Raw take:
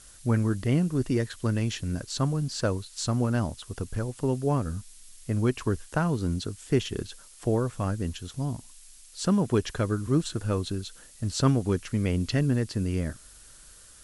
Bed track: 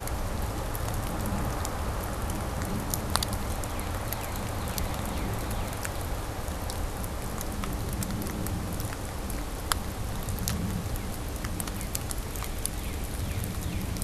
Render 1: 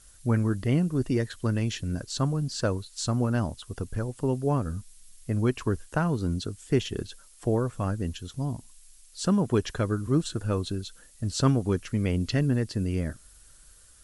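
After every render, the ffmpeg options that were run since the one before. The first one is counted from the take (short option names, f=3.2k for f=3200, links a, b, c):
-af "afftdn=nr=6:nf=-51"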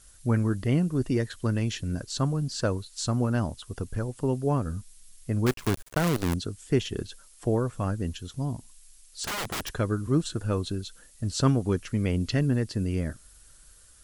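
-filter_complex "[0:a]asettb=1/sr,asplit=3[a][b][c];[a]atrim=end=5.464[d];[b]atrim=start=5.46:end=6.34,asetpts=PTS-STARTPTS,afade=t=in:d=0.004:c=qsin,afade=t=out:st=0.876:d=0.004:c=qsin,acrusher=bits=5:dc=4:mix=0:aa=0.000001[e];[c]atrim=start=6.336[f];[d][e]acrossfade=d=0.004:c1=hsin:c2=qsin[g];[g][f]acrossfade=d=0.004:c1=qsin:c2=hsin,asettb=1/sr,asplit=3[h][i][j];[h]atrim=end=9.244[k];[i]atrim=start=9.24:end=9.69,asetpts=PTS-STARTPTS,afade=t=in:d=0.004:c=qsin,afade=t=out:st=0.446:d=0.004:c=qsin,aeval=exprs='(mod(21.1*val(0)+1,2)-1)/21.1':c=same[l];[j]atrim=start=9.686[m];[k][l]acrossfade=d=0.004:c1=hsin:c2=qsin[n];[n][m]acrossfade=d=0.004:c1=qsin:c2=hsin"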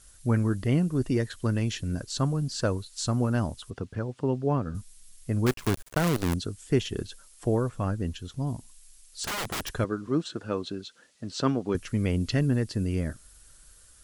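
-filter_complex "[0:a]asettb=1/sr,asplit=3[a][b][c];[a]atrim=end=3.704[d];[b]atrim=start=3.7:end=4.75,asetpts=PTS-STARTPTS,afade=t=in:d=0.004:c=qsin,afade=t=out:st=1.046:d=0.004:c=qsin,highpass=100,lowpass=4.1k[e];[c]atrim=start=4.746[f];[d][e]acrossfade=d=0.004:c1=hsin:c2=qsin[g];[g][f]acrossfade=d=0.004:c1=qsin:c2=hsin,asettb=1/sr,asplit=3[h][i][j];[h]atrim=end=7.694[k];[i]atrim=start=7.69:end=8.47,asetpts=PTS-STARTPTS,afade=t=in:d=0.004:c=qsin,afade=t=out:st=0.776:d=0.004:c=qsin,highshelf=f=6.7k:g=-6.5[l];[j]atrim=start=8.466[m];[k][l]acrossfade=d=0.004:c1=hsin:c2=qsin[n];[n][m]acrossfade=d=0.004:c1=qsin:c2=hsin,asettb=1/sr,asplit=3[o][p][q];[o]atrim=end=9.844[r];[p]atrim=start=9.84:end=11.75,asetpts=PTS-STARTPTS,afade=t=in:d=0.004:c=qsin,afade=t=out:st=1.906:d=0.004:c=qsin,highpass=210,lowpass=4.9k[s];[q]atrim=start=11.746[t];[r][s]acrossfade=d=0.004:c1=hsin:c2=qsin[u];[u][t]acrossfade=d=0.004:c1=qsin:c2=hsin"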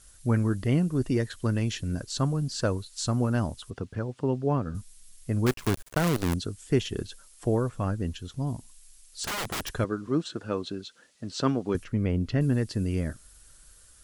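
-filter_complex "[0:a]asettb=1/sr,asplit=3[a][b][c];[a]atrim=end=11.844[d];[b]atrim=start=11.84:end=12.41,asetpts=PTS-STARTPTS,afade=t=in:d=0.004:c=qsin,afade=t=out:st=0.566:d=0.004:c=qsin,lowpass=f=1.6k:p=1[e];[c]atrim=start=12.406[f];[d][e]acrossfade=d=0.004:c1=hsin:c2=qsin[g];[g][f]acrossfade=d=0.004:c1=qsin:c2=hsin"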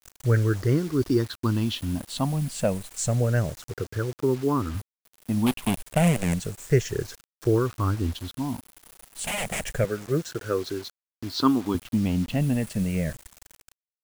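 -af "afftfilt=real='re*pow(10,15/40*sin(2*PI*(0.53*log(max(b,1)*sr/1024/100)/log(2)-(-0.3)*(pts-256)/sr)))':imag='im*pow(10,15/40*sin(2*PI*(0.53*log(max(b,1)*sr/1024/100)/log(2)-(-0.3)*(pts-256)/sr)))':win_size=1024:overlap=0.75,acrusher=bits=6:mix=0:aa=0.000001"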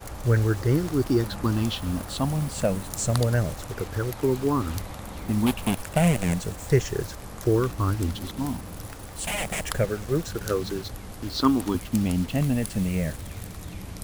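-filter_complex "[1:a]volume=-5.5dB[a];[0:a][a]amix=inputs=2:normalize=0"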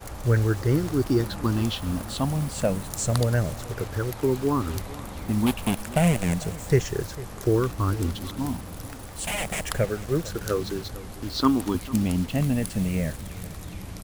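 -filter_complex "[0:a]asplit=2[a][b];[b]adelay=449,volume=-18dB,highshelf=f=4k:g=-10.1[c];[a][c]amix=inputs=2:normalize=0"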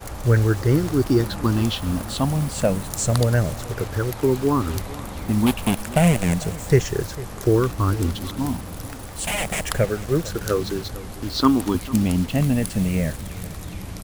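-af "volume=4dB,alimiter=limit=-3dB:level=0:latency=1"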